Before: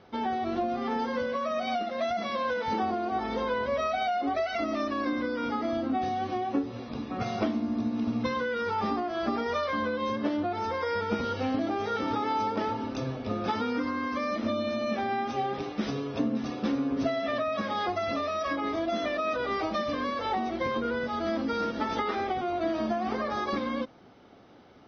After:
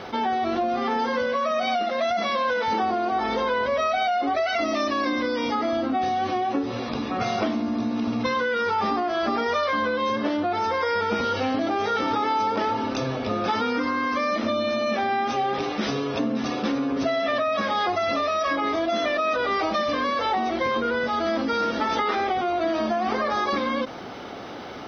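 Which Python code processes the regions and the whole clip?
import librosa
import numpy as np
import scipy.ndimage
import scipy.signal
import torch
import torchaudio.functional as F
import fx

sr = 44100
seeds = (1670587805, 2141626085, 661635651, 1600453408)

y = fx.chain(x, sr, fx.high_shelf(hz=5500.0, db=9.5),
    fx.notch(hz=1400.0, q=5.8), at=(4.61, 5.55))
y = fx.low_shelf(y, sr, hz=330.0, db=-8.5)
y = fx.env_flatten(y, sr, amount_pct=50)
y = y * 10.0 ** (5.5 / 20.0)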